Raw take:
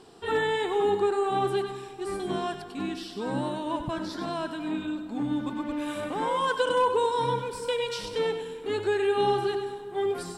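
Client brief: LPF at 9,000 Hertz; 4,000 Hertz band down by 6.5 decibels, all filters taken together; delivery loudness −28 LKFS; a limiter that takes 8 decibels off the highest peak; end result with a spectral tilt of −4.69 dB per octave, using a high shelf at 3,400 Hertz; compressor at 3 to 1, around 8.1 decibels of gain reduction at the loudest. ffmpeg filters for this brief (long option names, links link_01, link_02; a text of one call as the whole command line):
ffmpeg -i in.wav -af "lowpass=9000,highshelf=frequency=3400:gain=-6.5,equalizer=frequency=4000:width_type=o:gain=-4.5,acompressor=threshold=-32dB:ratio=3,volume=10dB,alimiter=limit=-20dB:level=0:latency=1" out.wav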